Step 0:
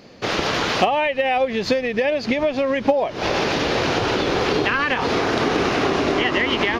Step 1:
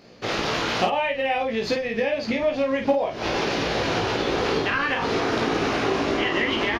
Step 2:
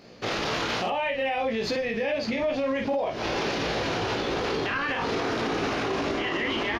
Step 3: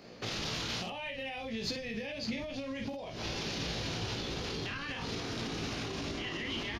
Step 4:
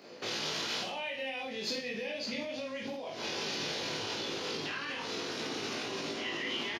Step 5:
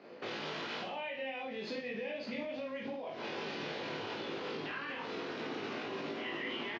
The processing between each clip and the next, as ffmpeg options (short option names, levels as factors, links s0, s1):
-af "aecho=1:1:18|52:0.668|0.562,volume=0.501"
-af "alimiter=limit=0.106:level=0:latency=1:release=22"
-filter_complex "[0:a]acrossover=split=210|3000[s0][s1][s2];[s1]acompressor=threshold=0.0112:ratio=10[s3];[s0][s3][s2]amix=inputs=3:normalize=0,volume=0.794"
-filter_complex "[0:a]highpass=260,asplit=2[s0][s1];[s1]aecho=0:1:20|46|79.8|123.7|180.9:0.631|0.398|0.251|0.158|0.1[s2];[s0][s2]amix=inputs=2:normalize=0"
-af "highpass=120,lowpass=2400,volume=0.891"